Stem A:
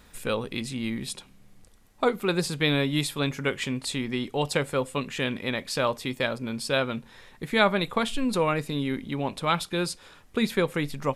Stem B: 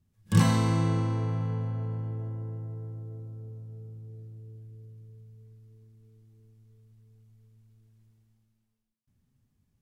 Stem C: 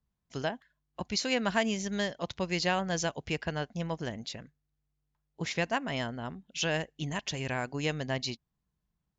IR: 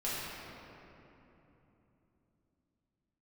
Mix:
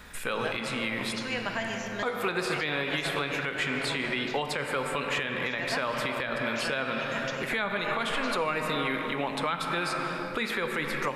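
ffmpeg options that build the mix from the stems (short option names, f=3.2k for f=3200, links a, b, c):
-filter_complex "[0:a]volume=2dB,asplit=2[a][b];[b]volume=-10.5dB[c];[1:a]acompressor=threshold=-27dB:ratio=6,volume=-11.5dB[d];[2:a]volume=-8.5dB,asplit=2[e][f];[f]volume=-5.5dB[g];[3:a]atrim=start_sample=2205[h];[c][g]amix=inputs=2:normalize=0[i];[i][h]afir=irnorm=-1:irlink=0[j];[a][d][e][j]amix=inputs=4:normalize=0,equalizer=f=1.7k:t=o:w=1.6:g=7.5,acrossover=split=390|3400[k][l][m];[k]acompressor=threshold=-38dB:ratio=4[n];[l]acompressor=threshold=-25dB:ratio=4[o];[m]acompressor=threshold=-41dB:ratio=4[p];[n][o][p]amix=inputs=3:normalize=0,alimiter=limit=-18.5dB:level=0:latency=1:release=74"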